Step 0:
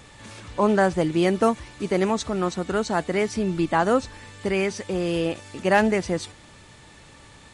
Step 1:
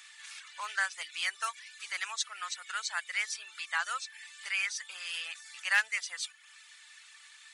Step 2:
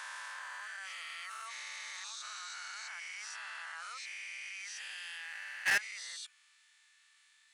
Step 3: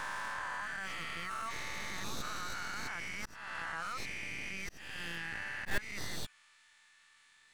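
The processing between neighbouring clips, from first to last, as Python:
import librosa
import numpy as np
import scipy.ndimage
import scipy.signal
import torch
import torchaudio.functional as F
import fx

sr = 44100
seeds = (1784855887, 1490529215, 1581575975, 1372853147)

y1 = scipy.signal.sosfilt(scipy.signal.butter(4, 1500.0, 'highpass', fs=sr, output='sos'), x)
y1 = fx.dereverb_blind(y1, sr, rt60_s=0.61)
y2 = fx.spec_swells(y1, sr, rise_s=2.66)
y2 = fx.level_steps(y2, sr, step_db=22)
y2 = np.clip(y2, -10.0 ** (-23.5 / 20.0), 10.0 ** (-23.5 / 20.0))
y2 = F.gain(torch.from_numpy(y2), -1.0).numpy()
y3 = fx.tracing_dist(y2, sr, depth_ms=0.16)
y3 = fx.tilt_shelf(y3, sr, db=9.5, hz=890.0)
y3 = fx.auto_swell(y3, sr, attack_ms=324.0)
y3 = F.gain(torch.from_numpy(y3), 9.0).numpy()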